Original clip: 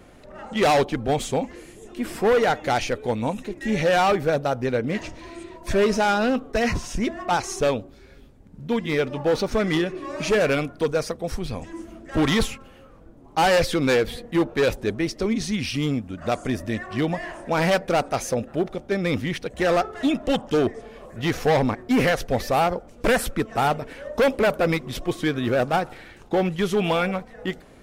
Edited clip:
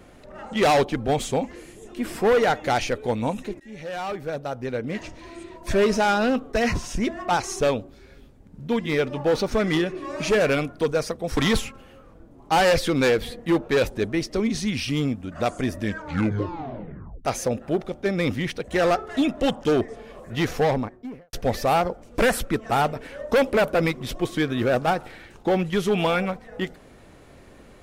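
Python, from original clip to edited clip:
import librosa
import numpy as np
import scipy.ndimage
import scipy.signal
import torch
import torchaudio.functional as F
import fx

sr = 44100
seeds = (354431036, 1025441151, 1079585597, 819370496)

y = fx.studio_fade_out(x, sr, start_s=21.28, length_s=0.91)
y = fx.edit(y, sr, fx.fade_in_from(start_s=3.6, length_s=2.12, floor_db=-21.0),
    fx.cut(start_s=11.37, length_s=0.86),
    fx.tape_stop(start_s=16.65, length_s=1.46), tone=tone)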